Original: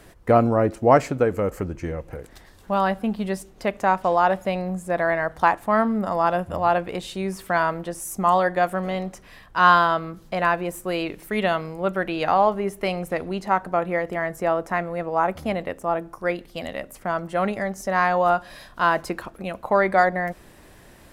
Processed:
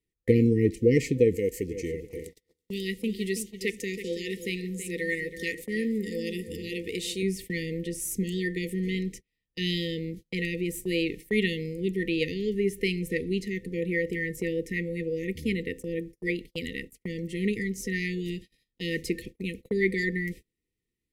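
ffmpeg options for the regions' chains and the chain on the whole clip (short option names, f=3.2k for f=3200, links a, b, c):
-filter_complex "[0:a]asettb=1/sr,asplit=3[a][b][c];[a]atrim=end=1.364[d];[b]atrim=start=1.36:end=7.23,asetpts=PTS-STARTPTS,afade=t=in:d=0.004:c=qsin,afade=t=out:st=5.866:d=0.004:c=qsin,bass=f=250:g=-9,treble=f=4k:g=6,asplit=2[e][f];[f]adelay=327,lowpass=f=3.4k:p=1,volume=-10dB,asplit=2[g][h];[h]adelay=327,lowpass=f=3.4k:p=1,volume=0.37,asplit=2[i][j];[j]adelay=327,lowpass=f=3.4k:p=1,volume=0.37,asplit=2[k][l];[l]adelay=327,lowpass=f=3.4k:p=1,volume=0.37[m];[e][g][i][k][m]amix=inputs=5:normalize=0,atrim=end_sample=258867[n];[c]atrim=start=7.226[o];[d][n]acrossfade=d=0.004:c1=hsin:c2=qsin[p];[p][o]acrossfade=d=0.004:c1=qsin:c2=hsin,afftfilt=real='re*(1-between(b*sr/4096,510,1800))':imag='im*(1-between(b*sr/4096,510,1800))':win_size=4096:overlap=0.75,agate=range=-36dB:threshold=-40dB:ratio=16:detection=peak"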